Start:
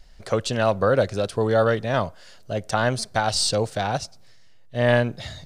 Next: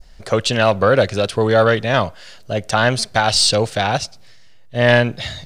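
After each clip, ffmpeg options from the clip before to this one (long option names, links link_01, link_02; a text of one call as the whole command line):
ffmpeg -i in.wav -af "adynamicequalizer=threshold=0.01:dfrequency=2700:dqfactor=0.86:tfrequency=2700:tqfactor=0.86:attack=5:release=100:ratio=0.375:range=3.5:mode=boostabove:tftype=bell,acontrast=37" out.wav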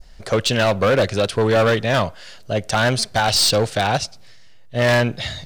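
ffmpeg -i in.wav -af "volume=12.5dB,asoftclip=hard,volume=-12.5dB" out.wav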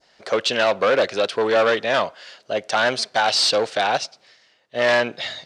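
ffmpeg -i in.wav -af "highpass=370,lowpass=5600" out.wav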